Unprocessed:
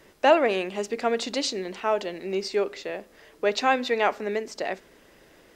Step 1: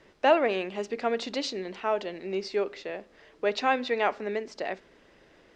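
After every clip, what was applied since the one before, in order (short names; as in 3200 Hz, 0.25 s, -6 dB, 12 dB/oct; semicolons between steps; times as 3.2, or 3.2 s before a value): LPF 5000 Hz 12 dB/oct; gain -3 dB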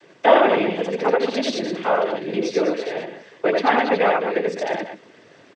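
treble ducked by the level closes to 2500 Hz, closed at -24.5 dBFS; loudspeakers at several distances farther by 29 m -2 dB, 70 m -9 dB; noise vocoder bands 16; gain +7 dB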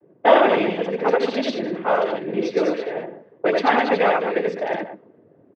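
low-pass opened by the level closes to 410 Hz, open at -14.5 dBFS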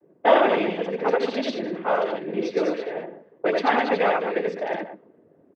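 bell 120 Hz -9 dB 0.32 oct; gain -3 dB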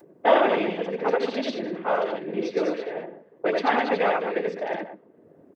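upward compressor, threshold -43 dBFS; gain -1.5 dB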